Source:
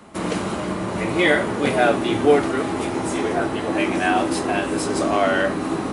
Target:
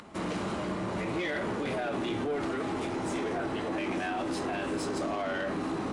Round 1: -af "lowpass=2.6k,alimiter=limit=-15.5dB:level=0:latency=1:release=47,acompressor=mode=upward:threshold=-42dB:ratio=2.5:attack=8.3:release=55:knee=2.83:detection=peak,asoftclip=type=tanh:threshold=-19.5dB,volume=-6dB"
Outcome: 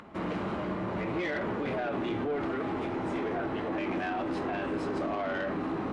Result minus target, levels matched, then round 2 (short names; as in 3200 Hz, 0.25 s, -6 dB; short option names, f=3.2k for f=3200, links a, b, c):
8000 Hz band -14.5 dB
-af "lowpass=7.3k,alimiter=limit=-15.5dB:level=0:latency=1:release=47,acompressor=mode=upward:threshold=-42dB:ratio=2.5:attack=8.3:release=55:knee=2.83:detection=peak,asoftclip=type=tanh:threshold=-19.5dB,volume=-6dB"